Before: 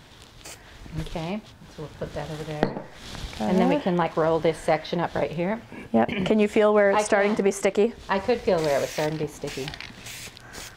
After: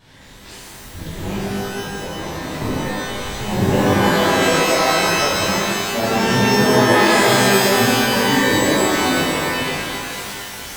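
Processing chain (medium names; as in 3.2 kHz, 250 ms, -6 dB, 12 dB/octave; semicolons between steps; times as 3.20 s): pitch shift switched off and on -10 st, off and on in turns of 123 ms; vibrato 1.7 Hz 8.6 cents; pitch-shifted reverb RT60 1.9 s, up +12 st, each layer -2 dB, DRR -11 dB; trim -6.5 dB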